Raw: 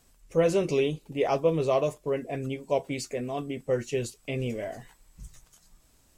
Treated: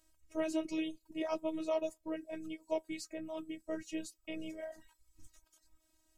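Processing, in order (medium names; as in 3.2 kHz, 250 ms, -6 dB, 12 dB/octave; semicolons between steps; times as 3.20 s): reverb removal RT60 0.63 s; robot voice 317 Hz; trim -7 dB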